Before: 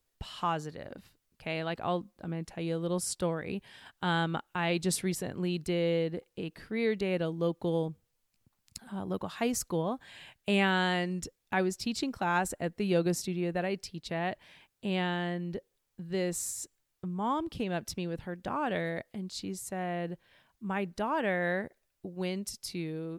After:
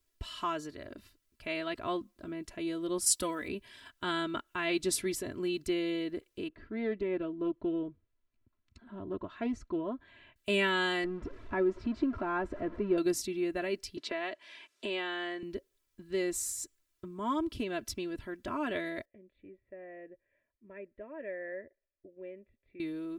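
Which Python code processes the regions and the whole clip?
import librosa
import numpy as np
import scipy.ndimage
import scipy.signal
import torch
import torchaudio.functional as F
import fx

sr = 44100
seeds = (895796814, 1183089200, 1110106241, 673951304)

y = fx.chain(x, sr, fx.highpass(hz=45.0, slope=12),
    fx.high_shelf(hz=4900.0, db=12.0),
    fx.comb(ms=4.0, depth=0.51), at=(3.06, 3.48))
y = fx.chain(y, sr, fx.spacing_loss(db_at_10k=34),
    fx.notch(hz=5000.0, q=9.1),
    fx.doppler_dist(depth_ms=0.14), at=(6.48, 10.36))
y = fx.chain(y, sr, fx.zero_step(step_db=-36.0),
    fx.lowpass(hz=1200.0, slope=12), at=(11.04, 12.98))
y = fx.chain(y, sr, fx.bandpass_edges(low_hz=380.0, high_hz=7200.0),
    fx.band_squash(depth_pct=70), at=(13.97, 15.43))
y = fx.chain(y, sr, fx.formant_cascade(vowel='e'),
    fx.low_shelf(hz=260.0, db=6.5), at=(19.05, 22.8))
y = fx.peak_eq(y, sr, hz=780.0, db=-13.5, octaves=0.27)
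y = y + 0.78 * np.pad(y, (int(3.0 * sr / 1000.0), 0))[:len(y)]
y = F.gain(torch.from_numpy(y), -2.0).numpy()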